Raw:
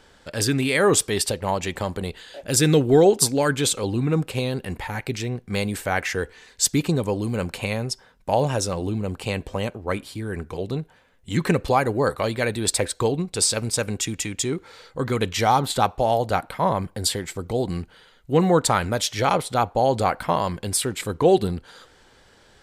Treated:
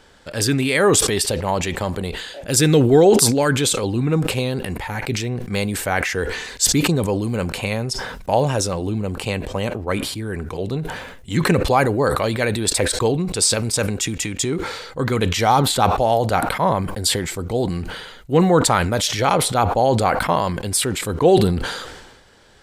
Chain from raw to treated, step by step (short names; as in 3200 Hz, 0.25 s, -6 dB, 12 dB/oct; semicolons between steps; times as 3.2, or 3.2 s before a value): sustainer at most 46 dB/s; gain +2.5 dB